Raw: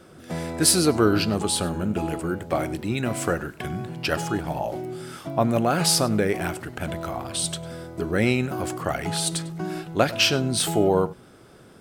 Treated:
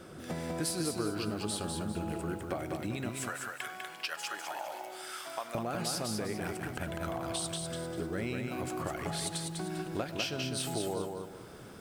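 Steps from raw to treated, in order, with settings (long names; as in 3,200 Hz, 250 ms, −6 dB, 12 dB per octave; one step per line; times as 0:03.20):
0:03.09–0:05.55: high-pass filter 1,100 Hz 12 dB per octave
downward compressor 4 to 1, threshold −36 dBFS, peak gain reduction 18.5 dB
feedback echo at a low word length 199 ms, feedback 35%, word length 10 bits, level −4 dB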